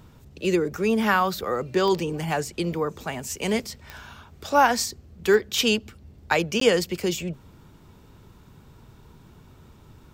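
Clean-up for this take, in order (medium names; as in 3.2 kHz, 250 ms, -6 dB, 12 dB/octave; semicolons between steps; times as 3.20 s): de-click; interpolate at 6.60 s, 13 ms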